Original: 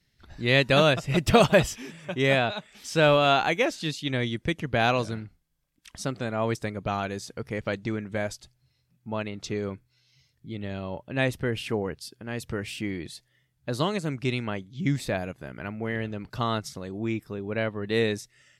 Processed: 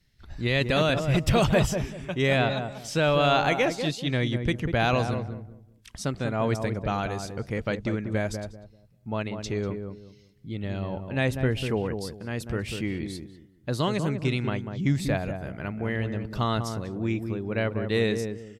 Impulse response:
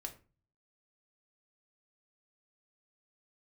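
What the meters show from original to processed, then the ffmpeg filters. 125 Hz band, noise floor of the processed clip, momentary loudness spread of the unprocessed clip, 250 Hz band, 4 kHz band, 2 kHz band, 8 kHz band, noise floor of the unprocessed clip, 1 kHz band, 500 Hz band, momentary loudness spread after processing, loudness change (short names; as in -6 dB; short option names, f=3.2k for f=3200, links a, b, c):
+3.0 dB, -57 dBFS, 16 LU, +1.5 dB, -2.0 dB, -1.5 dB, -0.5 dB, -71 dBFS, -1.0 dB, -1.0 dB, 12 LU, -0.5 dB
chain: -filter_complex "[0:a]lowshelf=f=83:g=10,alimiter=limit=-13dB:level=0:latency=1:release=13,asplit=2[a][b];[b]adelay=194,lowpass=f=860:p=1,volume=-5.5dB,asplit=2[c][d];[d]adelay=194,lowpass=f=860:p=1,volume=0.28,asplit=2[e][f];[f]adelay=194,lowpass=f=860:p=1,volume=0.28,asplit=2[g][h];[h]adelay=194,lowpass=f=860:p=1,volume=0.28[i];[a][c][e][g][i]amix=inputs=5:normalize=0"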